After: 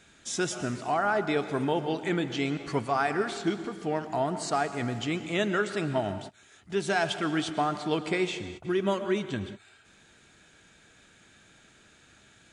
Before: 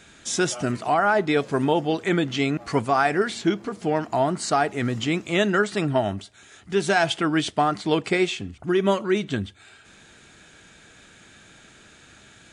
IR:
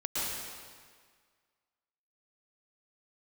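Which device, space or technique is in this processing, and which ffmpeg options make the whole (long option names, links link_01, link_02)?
keyed gated reverb: -filter_complex "[0:a]asplit=3[link_01][link_02][link_03];[1:a]atrim=start_sample=2205[link_04];[link_02][link_04]afir=irnorm=-1:irlink=0[link_05];[link_03]apad=whole_len=552363[link_06];[link_05][link_06]sidechaingate=range=-33dB:threshold=-40dB:ratio=16:detection=peak,volume=-16dB[link_07];[link_01][link_07]amix=inputs=2:normalize=0,volume=-7.5dB"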